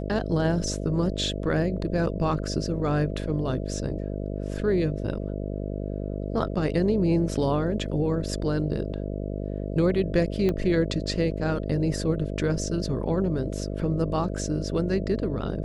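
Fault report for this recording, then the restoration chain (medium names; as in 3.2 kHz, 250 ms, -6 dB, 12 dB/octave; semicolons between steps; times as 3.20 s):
buzz 50 Hz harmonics 13 -31 dBFS
10.49 s: pop -15 dBFS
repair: de-click; de-hum 50 Hz, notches 13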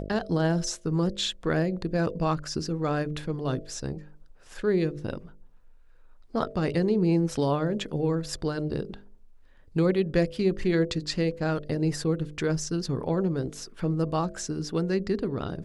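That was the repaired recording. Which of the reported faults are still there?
10.49 s: pop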